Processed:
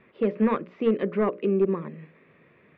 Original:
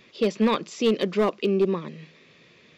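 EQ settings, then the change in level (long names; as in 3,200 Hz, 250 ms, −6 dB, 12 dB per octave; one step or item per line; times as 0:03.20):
low-pass filter 2,000 Hz 24 dB per octave
mains-hum notches 60/120/180/240/300/360/420/480/540/600 Hz
dynamic equaliser 830 Hz, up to −4 dB, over −36 dBFS, Q 1.6
0.0 dB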